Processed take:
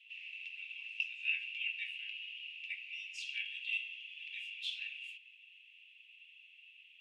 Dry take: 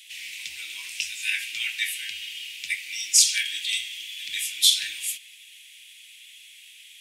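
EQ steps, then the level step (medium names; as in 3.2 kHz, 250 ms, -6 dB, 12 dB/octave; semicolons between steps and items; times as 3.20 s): band-pass filter 2.7 kHz, Q 16; tilt EQ -4 dB/octave; +4.0 dB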